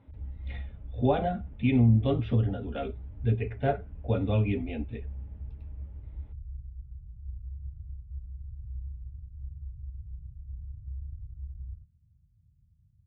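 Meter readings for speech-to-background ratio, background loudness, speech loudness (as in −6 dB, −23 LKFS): 14.5 dB, −43.0 LKFS, −28.5 LKFS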